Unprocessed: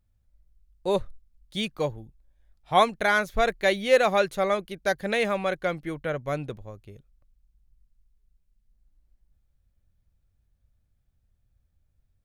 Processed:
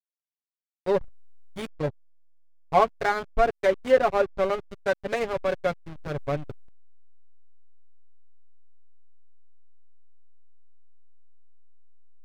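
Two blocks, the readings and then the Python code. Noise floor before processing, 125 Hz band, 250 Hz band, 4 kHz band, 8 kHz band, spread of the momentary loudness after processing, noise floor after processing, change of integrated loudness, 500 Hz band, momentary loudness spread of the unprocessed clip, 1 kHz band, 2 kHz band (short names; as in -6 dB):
-71 dBFS, 0.0 dB, -3.0 dB, -8.5 dB, n/a, 14 LU, under -85 dBFS, -0.5 dB, +0.5 dB, 12 LU, -0.5 dB, -5.5 dB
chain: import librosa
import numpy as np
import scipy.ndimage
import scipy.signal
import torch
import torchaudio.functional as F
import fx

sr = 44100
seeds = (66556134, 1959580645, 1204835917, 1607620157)

y = fx.env_lowpass_down(x, sr, base_hz=1600.0, full_db=-18.0)
y = fx.high_shelf(y, sr, hz=4900.0, db=-8.0)
y = y + 0.7 * np.pad(y, (int(7.2 * sr / 1000.0), 0))[:len(y)]
y = fx.backlash(y, sr, play_db=-21.5)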